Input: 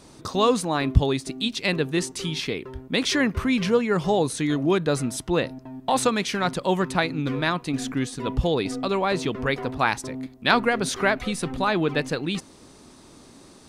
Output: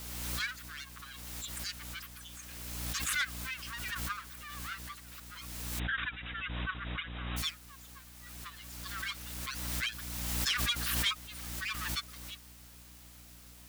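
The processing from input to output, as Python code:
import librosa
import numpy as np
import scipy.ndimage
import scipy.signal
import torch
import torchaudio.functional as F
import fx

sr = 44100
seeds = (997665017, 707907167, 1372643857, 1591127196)

p1 = fx.bin_expand(x, sr, power=3.0)
p2 = fx.peak_eq(p1, sr, hz=1600.0, db=8.0, octaves=0.27)
p3 = np.abs(p2)
p4 = scipy.signal.sosfilt(scipy.signal.cheby1(6, 3, 1100.0, 'highpass', fs=sr, output='sos'), p3)
p5 = fx.add_hum(p4, sr, base_hz=60, snr_db=16)
p6 = fx.rotary_switch(p5, sr, hz=0.8, then_hz=8.0, switch_at_s=2.0)
p7 = fx.quant_dither(p6, sr, seeds[0], bits=8, dither='triangular')
p8 = p6 + (p7 * 10.0 ** (-8.0 / 20.0))
p9 = 10.0 ** (-22.5 / 20.0) * np.tanh(p8 / 10.0 ** (-22.5 / 20.0))
p10 = fx.brickwall_lowpass(p9, sr, high_hz=3900.0, at=(5.78, 7.36), fade=0.02)
y = fx.pre_swell(p10, sr, db_per_s=27.0)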